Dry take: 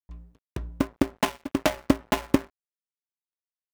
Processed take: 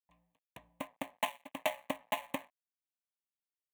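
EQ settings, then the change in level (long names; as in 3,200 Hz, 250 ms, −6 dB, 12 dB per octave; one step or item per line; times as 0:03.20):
Bessel high-pass filter 450 Hz, order 2
phaser with its sweep stopped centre 1,400 Hz, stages 6
−5.5 dB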